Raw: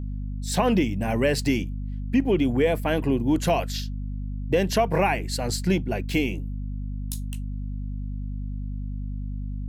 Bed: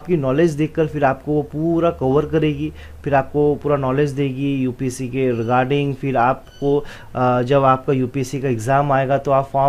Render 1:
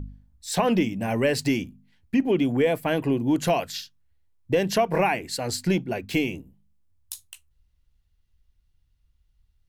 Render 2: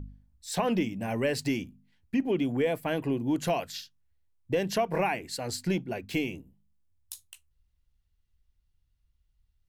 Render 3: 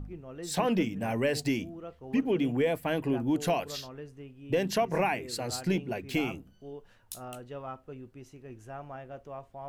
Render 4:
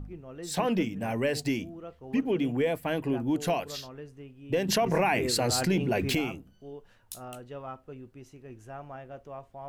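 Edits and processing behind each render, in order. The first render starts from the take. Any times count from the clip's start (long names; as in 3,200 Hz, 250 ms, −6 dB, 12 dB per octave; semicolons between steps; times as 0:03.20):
hum removal 50 Hz, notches 5
level −5.5 dB
mix in bed −26.5 dB
0:04.68–0:06.15: envelope flattener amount 70%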